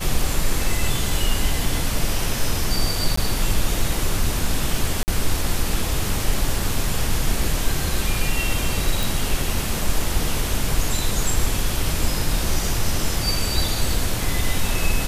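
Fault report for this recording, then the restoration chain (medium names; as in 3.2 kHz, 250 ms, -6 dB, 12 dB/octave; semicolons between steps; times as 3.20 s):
3.16–3.17 s: dropout 14 ms
5.03–5.08 s: dropout 49 ms
9.03 s: pop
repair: de-click; interpolate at 3.16 s, 14 ms; interpolate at 5.03 s, 49 ms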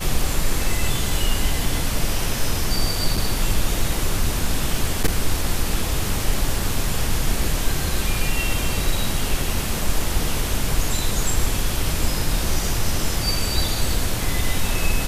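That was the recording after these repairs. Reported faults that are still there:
nothing left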